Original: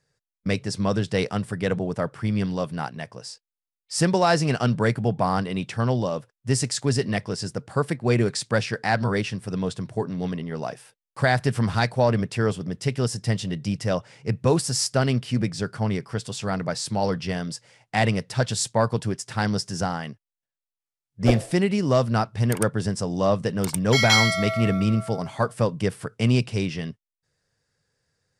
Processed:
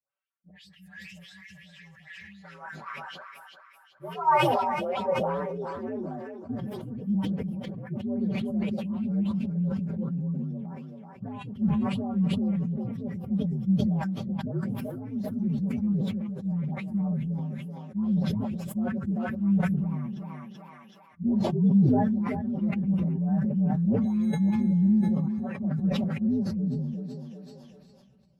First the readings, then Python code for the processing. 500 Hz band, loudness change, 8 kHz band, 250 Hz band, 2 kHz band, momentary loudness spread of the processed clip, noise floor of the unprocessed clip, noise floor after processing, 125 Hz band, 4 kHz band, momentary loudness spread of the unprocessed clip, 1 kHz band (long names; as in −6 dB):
−10.0 dB, −3.5 dB, below −25 dB, +0.5 dB, −13.0 dB, 18 LU, below −85 dBFS, −56 dBFS, −5.0 dB, −16.0 dB, 9 LU, −4.5 dB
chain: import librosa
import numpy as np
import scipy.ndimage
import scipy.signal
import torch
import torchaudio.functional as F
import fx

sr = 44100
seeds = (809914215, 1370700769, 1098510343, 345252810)

p1 = fx.partial_stretch(x, sr, pct=127)
p2 = fx.filter_sweep_bandpass(p1, sr, from_hz=1400.0, to_hz=200.0, start_s=3.61, end_s=6.68, q=3.8)
p3 = p2 + 0.75 * np.pad(p2, (int(5.2 * sr / 1000.0), 0))[:len(p2)]
p4 = fx.dispersion(p3, sr, late='highs', ms=117.0, hz=1200.0)
p5 = p4 + fx.echo_thinned(p4, sr, ms=382, feedback_pct=40, hz=790.0, wet_db=-7.5, dry=0)
p6 = fx.spec_box(p5, sr, start_s=0.51, length_s=1.93, low_hz=210.0, high_hz=1600.0, gain_db=-25)
y = fx.sustainer(p6, sr, db_per_s=23.0)